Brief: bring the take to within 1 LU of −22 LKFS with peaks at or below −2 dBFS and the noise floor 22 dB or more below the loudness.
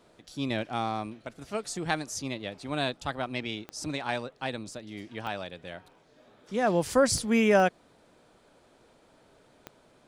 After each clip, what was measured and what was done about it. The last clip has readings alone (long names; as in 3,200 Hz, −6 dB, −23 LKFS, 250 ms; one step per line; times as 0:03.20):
number of clicks 5; integrated loudness −30.0 LKFS; sample peak −11.5 dBFS; target loudness −22.0 LKFS
→ click removal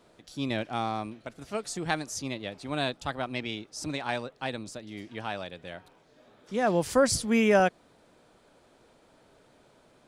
number of clicks 0; integrated loudness −30.0 LKFS; sample peak −11.5 dBFS; target loudness −22.0 LKFS
→ level +8 dB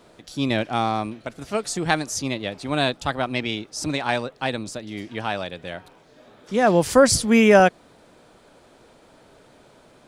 integrated loudness −22.0 LKFS; sample peak −3.5 dBFS; background noise floor −54 dBFS